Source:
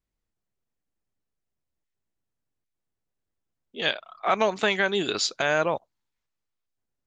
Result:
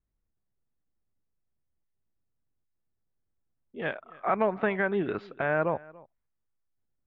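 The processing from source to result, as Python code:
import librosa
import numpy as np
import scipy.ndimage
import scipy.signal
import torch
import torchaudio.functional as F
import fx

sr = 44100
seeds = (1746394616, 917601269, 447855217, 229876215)

y = scipy.signal.sosfilt(scipy.signal.butter(4, 2000.0, 'lowpass', fs=sr, output='sos'), x)
y = fx.low_shelf(y, sr, hz=250.0, db=8.0)
y = y + 10.0 ** (-22.5 / 20.0) * np.pad(y, (int(286 * sr / 1000.0), 0))[:len(y)]
y = y * librosa.db_to_amplitude(-4.0)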